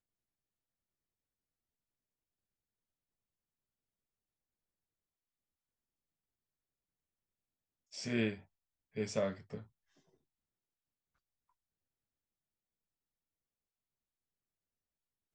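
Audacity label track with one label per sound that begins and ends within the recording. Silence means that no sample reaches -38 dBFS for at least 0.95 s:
7.960000	9.570000	sound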